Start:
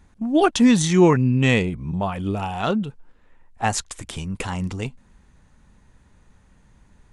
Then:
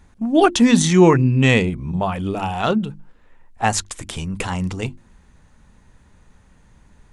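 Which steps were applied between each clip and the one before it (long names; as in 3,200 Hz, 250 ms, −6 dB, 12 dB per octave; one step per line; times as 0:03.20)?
mains-hum notches 50/100/150/200/250/300/350 Hz
level +3.5 dB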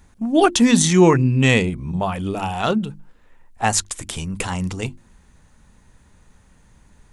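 high-shelf EQ 6,400 Hz +8 dB
level −1 dB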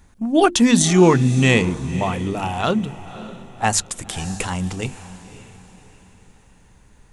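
feedback delay with all-pass diffusion 553 ms, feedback 41%, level −15 dB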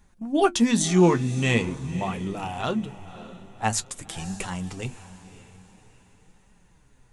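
flanger 0.46 Hz, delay 4.7 ms, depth 7 ms, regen +48%
level −3 dB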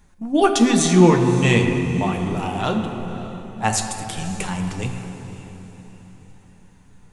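convolution reverb RT60 3.2 s, pre-delay 7 ms, DRR 4.5 dB
level +4 dB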